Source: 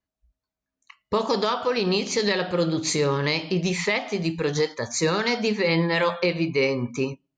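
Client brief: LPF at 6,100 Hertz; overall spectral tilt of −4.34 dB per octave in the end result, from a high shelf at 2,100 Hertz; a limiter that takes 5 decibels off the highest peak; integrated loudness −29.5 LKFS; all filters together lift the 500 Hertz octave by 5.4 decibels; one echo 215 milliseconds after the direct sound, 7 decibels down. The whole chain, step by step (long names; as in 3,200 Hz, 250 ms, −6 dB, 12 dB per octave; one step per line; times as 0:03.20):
low-pass filter 6,100 Hz
parametric band 500 Hz +6 dB
high-shelf EQ 2,100 Hz +4.5 dB
brickwall limiter −12.5 dBFS
single-tap delay 215 ms −7 dB
level −8 dB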